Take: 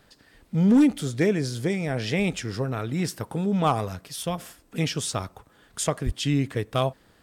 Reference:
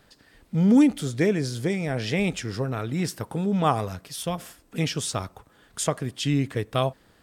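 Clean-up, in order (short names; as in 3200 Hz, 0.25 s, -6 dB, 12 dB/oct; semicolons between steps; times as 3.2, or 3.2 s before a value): clip repair -12.5 dBFS; 6.05–6.17 HPF 140 Hz 24 dB/oct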